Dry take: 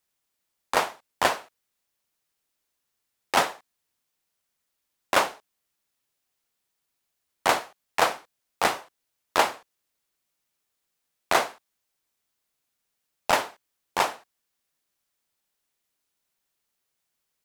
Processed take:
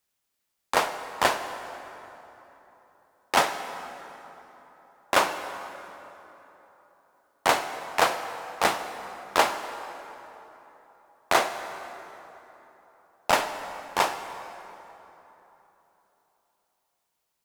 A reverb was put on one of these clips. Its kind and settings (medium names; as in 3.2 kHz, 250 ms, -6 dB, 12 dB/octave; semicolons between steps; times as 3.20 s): plate-style reverb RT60 3.6 s, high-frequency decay 0.6×, DRR 8 dB